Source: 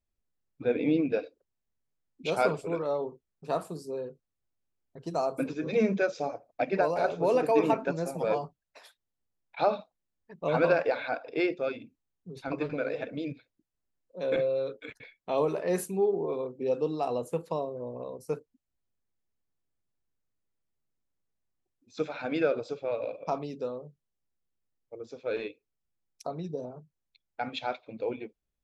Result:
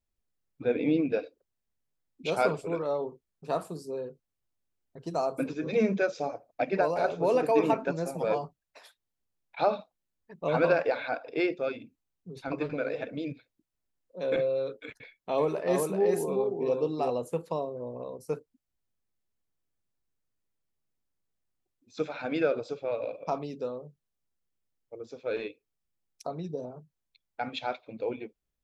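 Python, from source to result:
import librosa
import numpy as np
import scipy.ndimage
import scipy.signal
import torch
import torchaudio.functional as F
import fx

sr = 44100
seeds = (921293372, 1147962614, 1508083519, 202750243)

y = fx.echo_single(x, sr, ms=382, db=-3.5, at=(14.97, 17.1))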